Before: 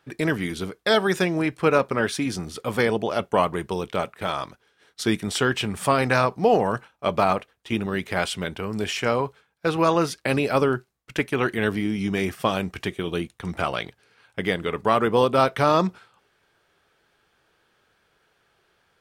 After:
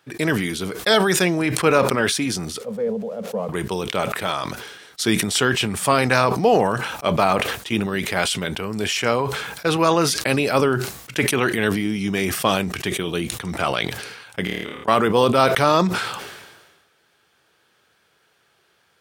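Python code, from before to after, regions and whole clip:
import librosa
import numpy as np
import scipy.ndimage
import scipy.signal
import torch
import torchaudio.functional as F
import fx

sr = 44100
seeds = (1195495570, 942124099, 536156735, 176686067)

y = fx.chain(x, sr, fx.crossing_spikes(level_db=-17.0),
    fx.double_bandpass(hz=320.0, octaves=1.2), at=(2.61, 3.49))
y = fx.chain(y, sr, fx.gate_flip(shuts_db=-15.0, range_db=-25),
    fx.room_flutter(wall_m=4.6, rt60_s=0.51),
    fx.sustainer(db_per_s=32.0), at=(14.44, 14.88))
y = scipy.signal.sosfilt(scipy.signal.butter(2, 81.0, 'highpass', fs=sr, output='sos'), y)
y = fx.high_shelf(y, sr, hz=3000.0, db=6.5)
y = fx.sustainer(y, sr, db_per_s=43.0)
y = y * librosa.db_to_amplitude(1.5)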